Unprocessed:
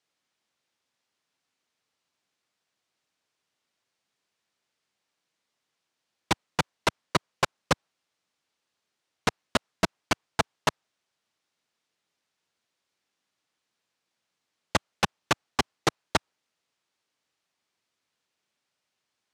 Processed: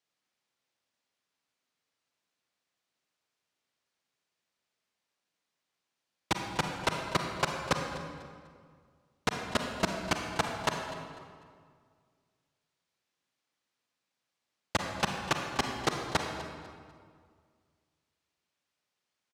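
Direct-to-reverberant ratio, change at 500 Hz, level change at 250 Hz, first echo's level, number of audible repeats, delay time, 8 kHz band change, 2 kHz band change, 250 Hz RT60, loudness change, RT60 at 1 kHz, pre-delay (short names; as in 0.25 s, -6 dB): 2.5 dB, -3.0 dB, -2.5 dB, -17.0 dB, 1, 0.248 s, -4.0 dB, -3.0 dB, 2.2 s, -4.0 dB, 1.9 s, 37 ms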